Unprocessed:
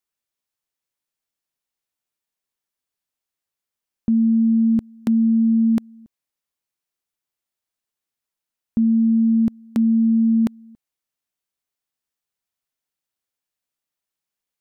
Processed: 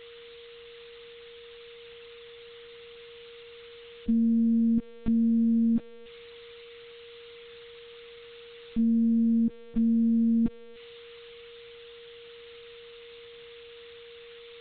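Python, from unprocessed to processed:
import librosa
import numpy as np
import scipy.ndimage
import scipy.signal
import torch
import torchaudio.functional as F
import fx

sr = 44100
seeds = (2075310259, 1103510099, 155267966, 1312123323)

y = x + 0.5 * 10.0 ** (-21.0 / 20.0) * np.diff(np.sign(x), prepend=np.sign(x[:1]))
y = fx.lpc_vocoder(y, sr, seeds[0], excitation='pitch_kept', order=8)
y = y + 10.0 ** (-39.0 / 20.0) * np.sin(2.0 * np.pi * 470.0 * np.arange(len(y)) / sr)
y = F.gain(torch.from_numpy(y), -7.0).numpy()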